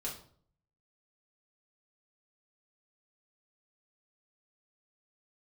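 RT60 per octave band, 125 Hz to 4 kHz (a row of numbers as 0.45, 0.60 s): 0.85, 0.65, 0.60, 0.50, 0.40, 0.40 s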